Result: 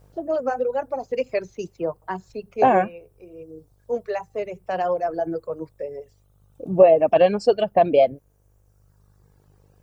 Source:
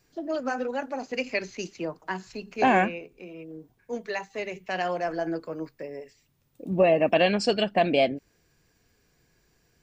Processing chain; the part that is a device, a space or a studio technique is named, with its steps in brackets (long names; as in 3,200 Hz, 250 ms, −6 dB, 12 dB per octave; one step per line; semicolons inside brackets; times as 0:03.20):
video cassette with head-switching buzz (hum with harmonics 50 Hz, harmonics 39, −56 dBFS −7 dB per octave; white noise bed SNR 38 dB)
high-shelf EQ 4,300 Hz −5.5 dB
notch filter 1,000 Hz, Q 18
reverb reduction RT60 1.6 s
graphic EQ with 10 bands 125 Hz +9 dB, 250 Hz −4 dB, 500 Hz +9 dB, 1,000 Hz +5 dB, 2,000 Hz −5 dB, 4,000 Hz −4 dB